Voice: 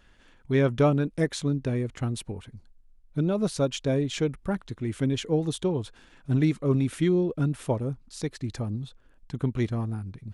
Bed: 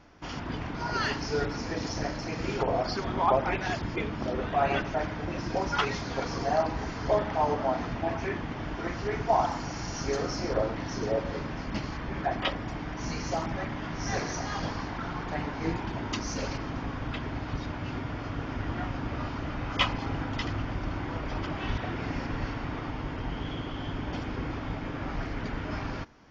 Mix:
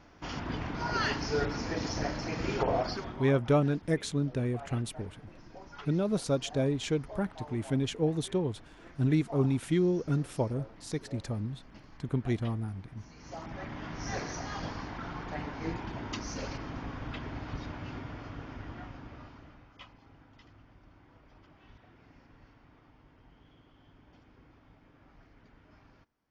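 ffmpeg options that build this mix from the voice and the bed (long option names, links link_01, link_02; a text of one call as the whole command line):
ffmpeg -i stem1.wav -i stem2.wav -filter_complex "[0:a]adelay=2700,volume=-3.5dB[link_01];[1:a]volume=14dB,afade=type=out:start_time=2.76:duration=0.5:silence=0.112202,afade=type=in:start_time=13.15:duration=0.67:silence=0.177828,afade=type=out:start_time=17.65:duration=2.07:silence=0.0944061[link_02];[link_01][link_02]amix=inputs=2:normalize=0" out.wav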